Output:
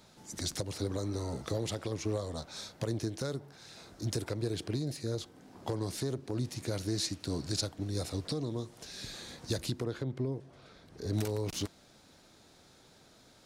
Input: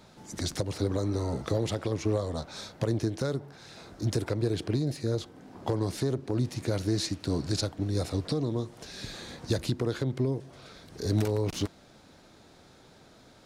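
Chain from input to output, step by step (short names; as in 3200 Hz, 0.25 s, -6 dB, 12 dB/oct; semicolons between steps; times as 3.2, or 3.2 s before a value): high shelf 3500 Hz +7.5 dB, from 9.84 s -5 dB, from 11.13 s +8 dB; gain -6 dB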